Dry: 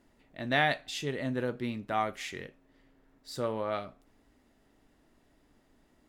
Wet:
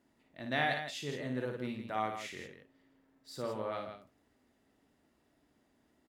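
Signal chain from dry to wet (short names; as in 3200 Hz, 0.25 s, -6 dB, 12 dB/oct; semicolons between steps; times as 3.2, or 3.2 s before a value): HPF 65 Hz; notches 50/100 Hz; on a send: loudspeakers at several distances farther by 19 m -5 dB, 56 m -8 dB; on the sum: gain -6.5 dB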